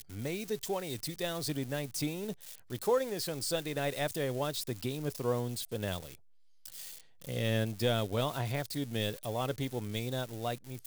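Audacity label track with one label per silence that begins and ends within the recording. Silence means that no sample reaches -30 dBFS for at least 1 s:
5.980000	7.290000	silence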